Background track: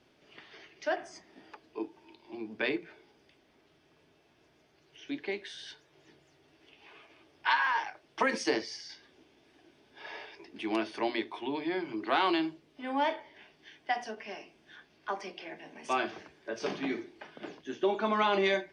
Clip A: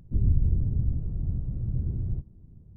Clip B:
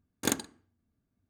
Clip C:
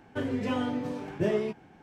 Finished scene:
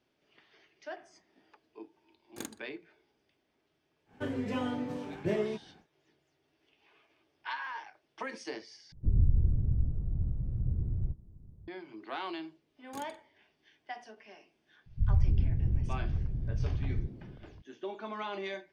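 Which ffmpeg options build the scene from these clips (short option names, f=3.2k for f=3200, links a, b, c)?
-filter_complex "[2:a]asplit=2[a][b];[1:a]asplit=2[c][d];[0:a]volume=-11dB[e];[c]equalizer=f=230:w=0.56:g=-4[f];[b]alimiter=limit=-19.5dB:level=0:latency=1:release=175[g];[d]acrossover=split=180[h][i];[i]adelay=290[j];[h][j]amix=inputs=2:normalize=0[k];[e]asplit=2[l][m];[l]atrim=end=8.924[n];[f]atrim=end=2.76,asetpts=PTS-STARTPTS,volume=-1.5dB[o];[m]atrim=start=11.676[p];[a]atrim=end=1.29,asetpts=PTS-STARTPTS,volume=-14dB,afade=t=in:d=0.004:c=hsin,afade=t=out:st=1.286:d=0.004:c=hsin,adelay=2130[q];[3:a]atrim=end=1.82,asetpts=PTS-STARTPTS,volume=-4dB,afade=t=in:d=0.1,afade=t=out:st=1.72:d=0.1,adelay=178605S[r];[g]atrim=end=1.29,asetpts=PTS-STARTPTS,volume=-13dB,afade=t=in:d=0.004:c=hsin,afade=t=out:st=1.286:d=0.004:c=hsin,adelay=12700[s];[k]atrim=end=2.76,asetpts=PTS-STARTPTS,volume=-2.5dB,afade=t=in:d=0.004:c=hsin,afade=t=out:st=2.756:d=0.004:c=hsin,adelay=14860[t];[n][o]acrossfade=d=0.004:c1=hsin:c2=hsin[u];[u][p]acrossfade=d=0.004:c1=hsin:c2=hsin[v];[v][q][r][s][t]amix=inputs=5:normalize=0"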